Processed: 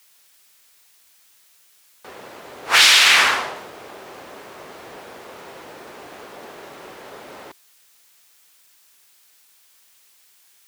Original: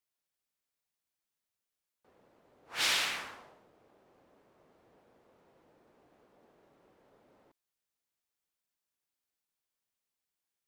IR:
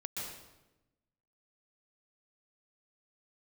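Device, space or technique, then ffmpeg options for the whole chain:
mastering chain: -filter_complex "[0:a]highpass=40,equalizer=f=390:t=o:w=0.22:g=4,acompressor=threshold=0.0112:ratio=3,tiltshelf=f=750:g=-7,asoftclip=type=hard:threshold=0.0631,alimiter=level_in=26.6:limit=0.891:release=50:level=0:latency=1,asettb=1/sr,asplit=3[s0][s1][s2];[s0]atrim=end=2.784[s3];[s1]atrim=start=2.78:end=3.56,asetpts=PTS-STARTPTS,afade=t=in:d=0.004:c=qsin,afade=t=out:st=0.776:d=0.004:c=qsin,highshelf=f=8800:g=-5.5[s4];[s2]atrim=start=3.556[s5];[s3][s4]acrossfade=d=0.004:c1=hsin:c2=qsin[s6];[s6][s5]acrossfade=d=0.004:c1=qsin:c2=hsin,volume=0.841"

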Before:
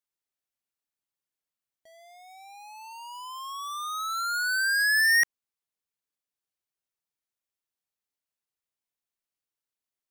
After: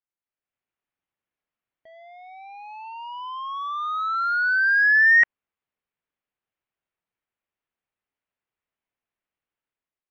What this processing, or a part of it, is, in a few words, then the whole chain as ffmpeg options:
action camera in a waterproof case: -af "lowpass=f=2800:w=0.5412,lowpass=f=2800:w=1.3066,dynaudnorm=f=140:g=7:m=2.82,volume=0.75" -ar 24000 -c:a aac -b:a 48k

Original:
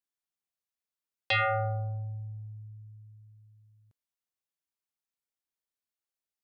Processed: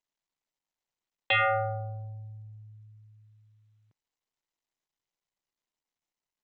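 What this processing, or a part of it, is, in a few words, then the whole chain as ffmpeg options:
Bluetooth headset: -af "highpass=140,aresample=8000,aresample=44100,volume=1.33" -ar 16000 -c:a sbc -b:a 64k

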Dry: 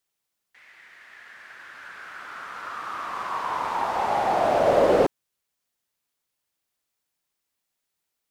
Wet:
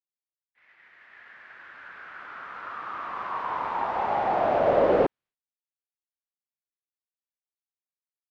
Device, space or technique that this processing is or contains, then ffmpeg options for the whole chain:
hearing-loss simulation: -af "lowpass=2700,agate=range=0.0224:threshold=0.00398:ratio=3:detection=peak,volume=0.794"

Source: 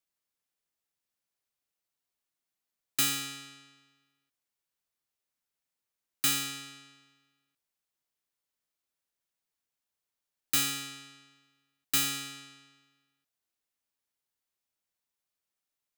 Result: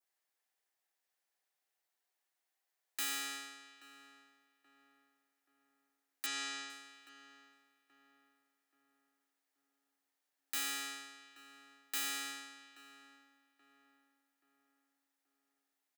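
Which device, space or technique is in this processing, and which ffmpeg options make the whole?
laptop speaker: -filter_complex "[0:a]highpass=f=310:w=0.5412,highpass=f=310:w=1.3066,equalizer=f=770:t=o:w=0.34:g=8,equalizer=f=1800:t=o:w=0.45:g=7,alimiter=level_in=1.5:limit=0.0631:level=0:latency=1:release=295,volume=0.668,adynamicequalizer=threshold=0.00158:dfrequency=2900:dqfactor=1.3:tfrequency=2900:tqfactor=1.3:attack=5:release=100:ratio=0.375:range=3:mode=cutabove:tftype=bell,asettb=1/sr,asplit=3[s0][s1][s2];[s0]atrim=end=6.264[s3];[s1]atrim=start=6.26:end=6.7,asetpts=PTS-STARTPTS,afade=t=in:d=0.004:c=qsin,afade=t=out:st=0.436:d=0.004:c=qsin,lowpass=f=7300:w=0.5412,lowpass=f=7300:w=1.3066[s4];[s2]atrim=start=6.696[s5];[s3][s4]acrossfade=d=0.004:c1=hsin:c2=qsin[s6];[s6][s5]acrossfade=d=0.004:c1=qsin:c2=hsin,asplit=2[s7][s8];[s8]adelay=829,lowpass=f=1400:p=1,volume=0.211,asplit=2[s9][s10];[s10]adelay=829,lowpass=f=1400:p=1,volume=0.47,asplit=2[s11][s12];[s12]adelay=829,lowpass=f=1400:p=1,volume=0.47,asplit=2[s13][s14];[s14]adelay=829,lowpass=f=1400:p=1,volume=0.47,asplit=2[s15][s16];[s16]adelay=829,lowpass=f=1400:p=1,volume=0.47[s17];[s7][s9][s11][s13][s15][s17]amix=inputs=6:normalize=0"

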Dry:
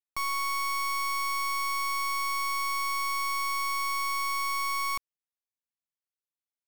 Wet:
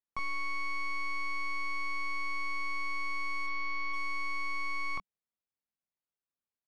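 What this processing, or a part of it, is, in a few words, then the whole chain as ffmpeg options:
phone in a pocket: -filter_complex "[0:a]lowpass=3900,equalizer=f=190:t=o:w=0.41:g=4,highshelf=f=2000:g=-9.5,asplit=3[s0][s1][s2];[s0]afade=t=out:st=3.46:d=0.02[s3];[s1]lowpass=f=5600:w=0.5412,lowpass=f=5600:w=1.3066,afade=t=in:st=3.46:d=0.02,afade=t=out:st=3.92:d=0.02[s4];[s2]afade=t=in:st=3.92:d=0.02[s5];[s3][s4][s5]amix=inputs=3:normalize=0,asplit=2[s6][s7];[s7]adelay=23,volume=0.596[s8];[s6][s8]amix=inputs=2:normalize=0"

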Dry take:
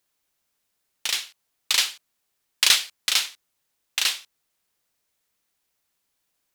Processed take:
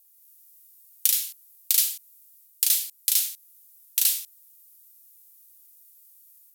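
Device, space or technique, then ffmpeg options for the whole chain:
FM broadcast chain: -filter_complex "[0:a]highpass=72,dynaudnorm=f=140:g=3:m=1.68,acrossover=split=1200|2400[s0][s1][s2];[s0]acompressor=threshold=0.00316:ratio=4[s3];[s1]acompressor=threshold=0.0224:ratio=4[s4];[s2]acompressor=threshold=0.0501:ratio=4[s5];[s3][s4][s5]amix=inputs=3:normalize=0,aemphasis=mode=production:type=75fm,alimiter=limit=0.75:level=0:latency=1:release=167,asoftclip=type=hard:threshold=0.501,lowpass=f=15000:w=0.5412,lowpass=f=15000:w=1.3066,aemphasis=mode=production:type=75fm,asettb=1/sr,asplit=3[s6][s7][s8];[s6]atrim=end=1.724[s9];[s7]atrim=start=1.72:end=3.26,asetpts=PTS-STARTPTS,afade=t=in:d=0.004:c=qsin,afade=t=out:st=1.536:d=0.004:c=qsin,equalizer=f=350:w=0.46:g=-5[s10];[s8]atrim=start=3.256[s11];[s9][s10]acrossfade=d=0.004:c1=hsin:c2=qsin[s12];[s12][s11]acrossfade=d=0.004:c1=qsin:c2=hsin,volume=0.237"

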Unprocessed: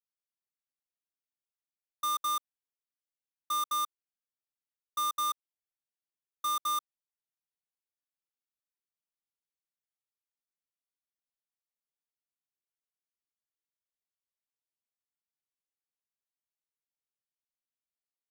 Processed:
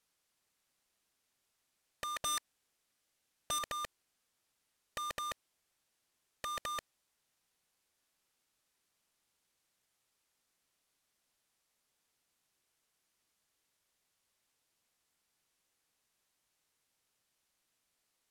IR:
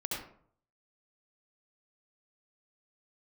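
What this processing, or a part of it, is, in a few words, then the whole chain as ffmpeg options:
overflowing digital effects unit: -filter_complex "[0:a]asplit=3[s0][s1][s2];[s0]afade=t=out:st=2.16:d=0.02[s3];[s1]equalizer=f=1000:t=o:w=0.21:g=-3,afade=t=in:st=2.16:d=0.02,afade=t=out:st=3.58:d=0.02[s4];[s2]afade=t=in:st=3.58:d=0.02[s5];[s3][s4][s5]amix=inputs=3:normalize=0,aeval=exprs='(mod(188*val(0)+1,2)-1)/188':c=same,lowpass=12000,volume=6.68"

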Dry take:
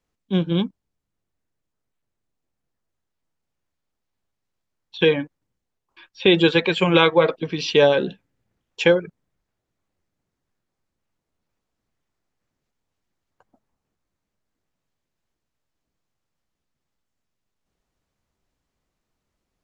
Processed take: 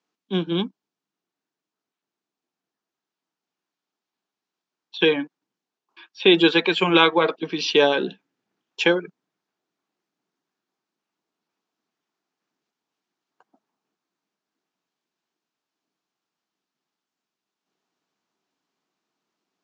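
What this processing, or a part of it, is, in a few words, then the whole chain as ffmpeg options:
television speaker: -af "highpass=f=210:w=0.5412,highpass=f=210:w=1.3066,equalizer=f=230:t=q:w=4:g=-4,equalizer=f=540:t=q:w=4:g=-9,equalizer=f=2000:t=q:w=4:g=-4,lowpass=f=6600:w=0.5412,lowpass=f=6600:w=1.3066,volume=1.26"

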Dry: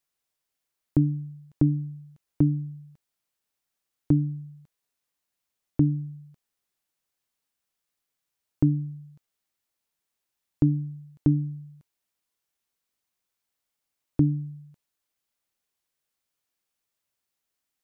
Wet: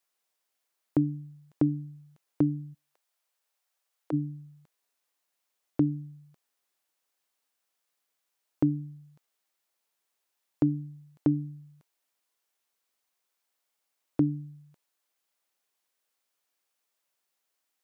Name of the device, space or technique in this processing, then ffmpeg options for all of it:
filter by subtraction: -filter_complex "[0:a]asplit=2[s0][s1];[s1]lowpass=630,volume=-1[s2];[s0][s2]amix=inputs=2:normalize=0,asplit=3[s3][s4][s5];[s3]afade=t=out:st=2.73:d=0.02[s6];[s4]highpass=f=450:w=0.5412,highpass=f=450:w=1.3066,afade=t=in:st=2.73:d=0.02,afade=t=out:st=4.12:d=0.02[s7];[s5]afade=t=in:st=4.12:d=0.02[s8];[s6][s7][s8]amix=inputs=3:normalize=0,volume=1.26"

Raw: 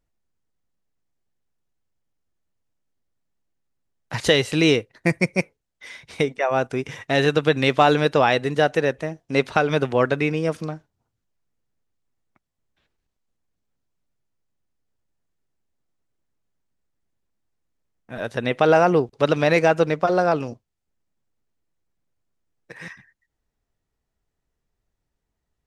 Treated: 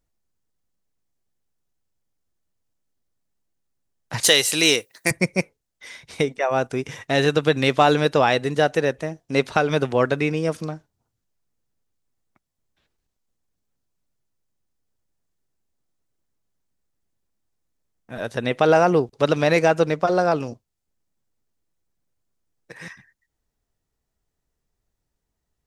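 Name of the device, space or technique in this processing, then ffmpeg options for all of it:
exciter from parts: -filter_complex "[0:a]asettb=1/sr,asplit=3[s0][s1][s2];[s0]atrim=end=4.234[s3];[s1]atrim=start=4.23:end=5.11,asetpts=PTS-STARTPTS,afade=t=in:d=0.004:c=qsin,afade=t=out:st=0.876:d=0.004:c=qsin,aemphasis=mode=production:type=riaa[s4];[s2]atrim=start=5.106[s5];[s3][s4]acrossfade=d=0.004:c1=hsin:c2=qsin[s6];[s6][s5]acrossfade=d=0.004:c1=qsin:c2=hsin,asplit=2[s7][s8];[s8]highpass=3600,asoftclip=type=tanh:threshold=0.075,volume=0.631[s9];[s7][s9]amix=inputs=2:normalize=0"

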